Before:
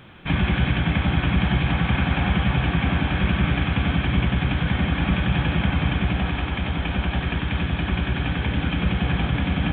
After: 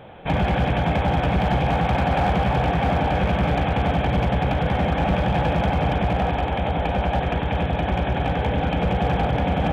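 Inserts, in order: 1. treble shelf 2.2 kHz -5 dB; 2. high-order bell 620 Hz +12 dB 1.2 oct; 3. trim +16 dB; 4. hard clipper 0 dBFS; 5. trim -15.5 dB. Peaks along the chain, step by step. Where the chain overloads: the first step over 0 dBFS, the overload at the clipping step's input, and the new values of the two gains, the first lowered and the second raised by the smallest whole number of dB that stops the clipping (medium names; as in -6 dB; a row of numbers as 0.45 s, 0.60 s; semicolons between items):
-8.0 dBFS, -7.0 dBFS, +9.0 dBFS, 0.0 dBFS, -15.5 dBFS; step 3, 9.0 dB; step 3 +7 dB, step 5 -6.5 dB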